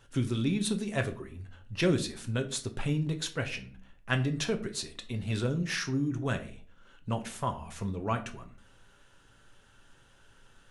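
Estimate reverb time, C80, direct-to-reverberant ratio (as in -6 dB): 0.45 s, 18.0 dB, 5.5 dB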